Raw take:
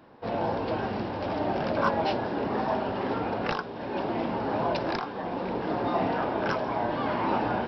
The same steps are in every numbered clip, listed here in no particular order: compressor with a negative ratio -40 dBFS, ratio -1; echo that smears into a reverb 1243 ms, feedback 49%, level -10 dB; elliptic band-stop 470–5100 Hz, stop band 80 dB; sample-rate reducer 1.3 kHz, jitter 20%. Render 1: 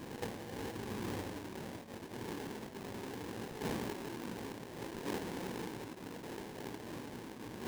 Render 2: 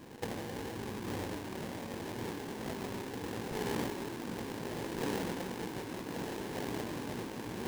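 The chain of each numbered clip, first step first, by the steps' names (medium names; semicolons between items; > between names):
echo that smears into a reverb > compressor with a negative ratio > elliptic band-stop > sample-rate reducer; elliptic band-stop > compressor with a negative ratio > sample-rate reducer > echo that smears into a reverb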